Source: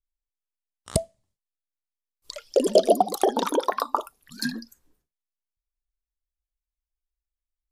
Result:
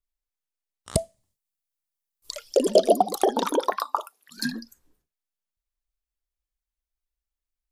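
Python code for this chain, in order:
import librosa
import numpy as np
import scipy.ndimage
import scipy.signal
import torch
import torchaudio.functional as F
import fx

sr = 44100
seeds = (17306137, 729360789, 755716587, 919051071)

y = fx.high_shelf(x, sr, hz=6700.0, db=10.0, at=(0.98, 2.57))
y = fx.highpass(y, sr, hz=fx.line((3.75, 980.0), (4.36, 320.0)), slope=12, at=(3.75, 4.36), fade=0.02)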